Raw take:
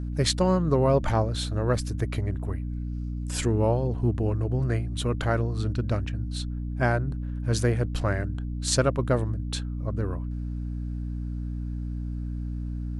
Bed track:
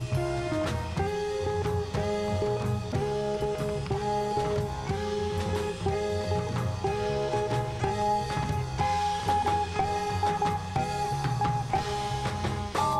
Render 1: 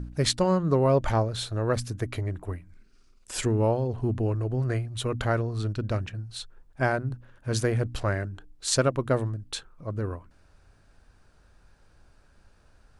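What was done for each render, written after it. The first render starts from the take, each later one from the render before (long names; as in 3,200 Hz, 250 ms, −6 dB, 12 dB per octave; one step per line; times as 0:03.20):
hum removal 60 Hz, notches 5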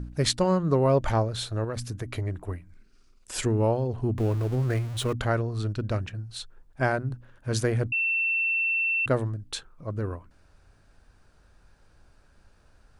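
0:01.64–0:02.15: downward compressor 10 to 1, threshold −27 dBFS
0:04.18–0:05.13: converter with a step at zero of −35 dBFS
0:07.92–0:09.06: beep over 2,690 Hz −22.5 dBFS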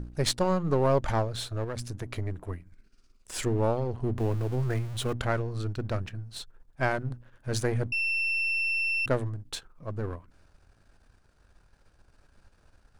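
gain on one half-wave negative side −7 dB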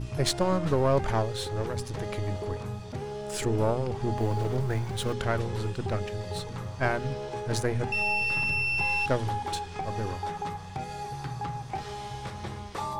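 mix in bed track −7 dB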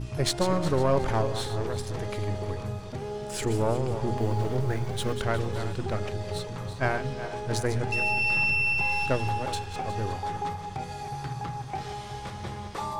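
feedback delay that plays each chunk backwards 182 ms, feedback 55%, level −9.5 dB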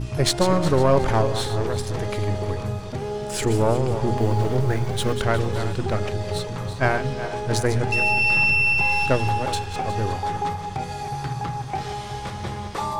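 level +6 dB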